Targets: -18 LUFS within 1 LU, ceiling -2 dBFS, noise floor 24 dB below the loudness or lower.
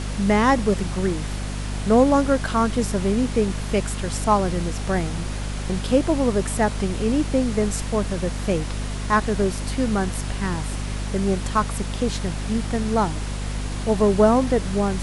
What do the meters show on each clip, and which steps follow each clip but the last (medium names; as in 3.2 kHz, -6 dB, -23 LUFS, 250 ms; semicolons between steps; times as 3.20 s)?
hum 50 Hz; highest harmonic 250 Hz; hum level -25 dBFS; noise floor -28 dBFS; noise floor target -47 dBFS; loudness -22.5 LUFS; peak level -4.5 dBFS; loudness target -18.0 LUFS
-> de-hum 50 Hz, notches 5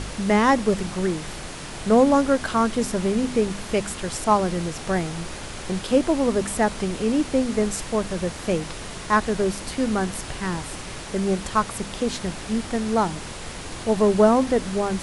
hum not found; noise floor -35 dBFS; noise floor target -47 dBFS
-> noise print and reduce 12 dB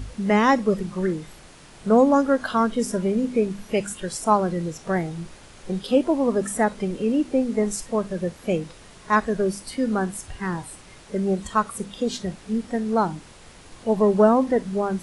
noise floor -47 dBFS; noise floor target -48 dBFS
-> noise print and reduce 6 dB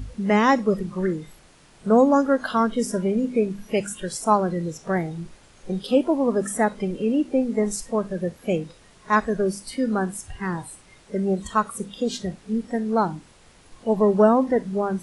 noise floor -53 dBFS; loudness -23.5 LUFS; peak level -5.5 dBFS; loudness target -18.0 LUFS
-> trim +5.5 dB; peak limiter -2 dBFS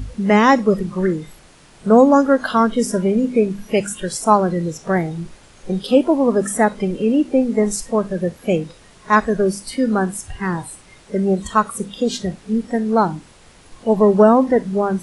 loudness -18.0 LUFS; peak level -2.0 dBFS; noise floor -47 dBFS